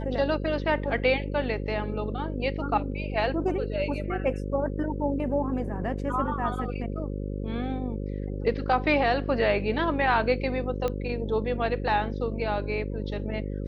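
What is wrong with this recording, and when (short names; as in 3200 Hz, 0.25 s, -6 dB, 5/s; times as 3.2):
buzz 50 Hz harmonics 11 -32 dBFS
10.88 pop -17 dBFS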